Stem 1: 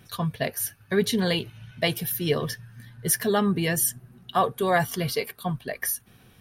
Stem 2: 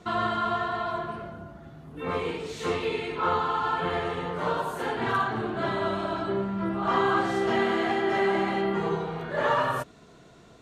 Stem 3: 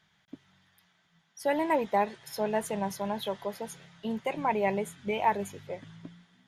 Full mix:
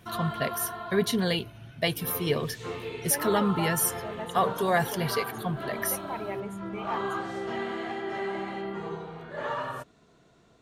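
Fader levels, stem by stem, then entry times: -2.5 dB, -8.0 dB, -9.0 dB; 0.00 s, 0.00 s, 1.65 s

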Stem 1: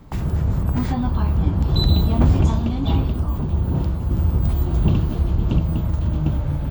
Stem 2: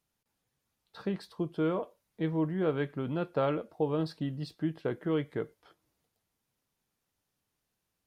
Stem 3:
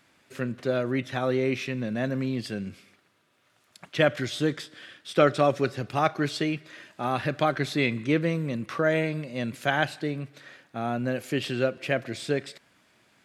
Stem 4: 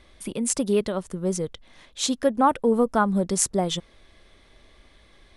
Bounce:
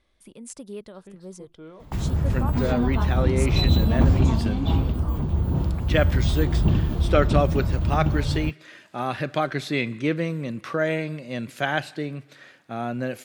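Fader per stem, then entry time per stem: -2.5 dB, -14.0 dB, 0.0 dB, -15.0 dB; 1.80 s, 0.00 s, 1.95 s, 0.00 s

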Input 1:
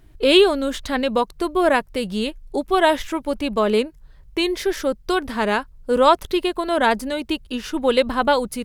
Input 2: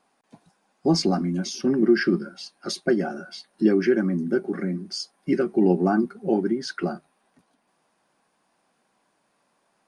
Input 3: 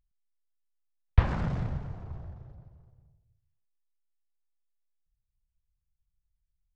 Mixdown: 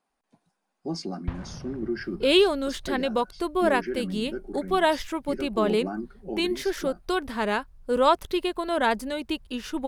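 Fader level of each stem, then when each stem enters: -5.5 dB, -11.5 dB, -10.5 dB; 2.00 s, 0.00 s, 0.10 s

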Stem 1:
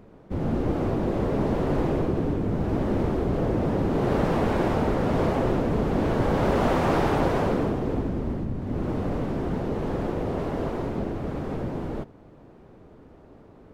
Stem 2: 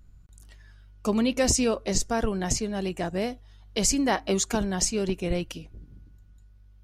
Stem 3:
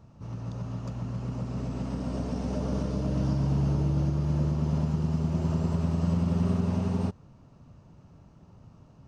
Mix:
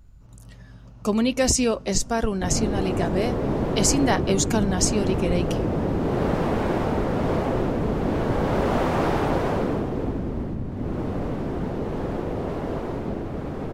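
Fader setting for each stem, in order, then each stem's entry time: 0.0 dB, +2.5 dB, -12.5 dB; 2.10 s, 0.00 s, 0.00 s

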